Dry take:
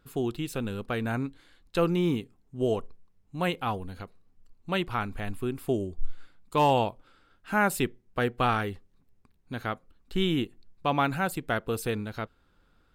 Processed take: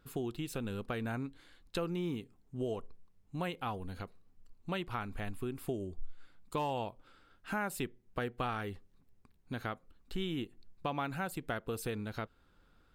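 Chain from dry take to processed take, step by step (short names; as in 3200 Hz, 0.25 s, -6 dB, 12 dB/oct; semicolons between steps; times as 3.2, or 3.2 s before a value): compressor 3:1, threshold -34 dBFS, peak gain reduction 12 dB; gain -1.5 dB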